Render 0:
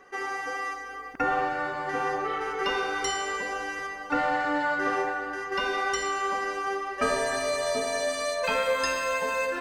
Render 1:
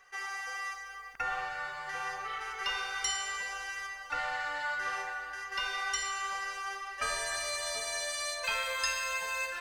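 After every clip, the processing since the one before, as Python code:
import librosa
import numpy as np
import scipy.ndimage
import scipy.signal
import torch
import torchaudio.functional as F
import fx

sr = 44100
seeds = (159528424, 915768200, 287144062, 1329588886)

y = fx.tone_stack(x, sr, knobs='10-0-10')
y = y * librosa.db_to_amplitude(1.0)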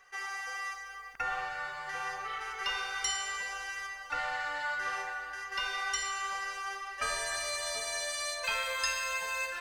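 y = x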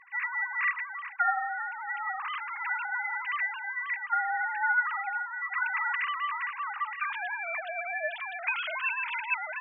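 y = fx.sine_speech(x, sr)
y = y * librosa.db_to_amplitude(4.0)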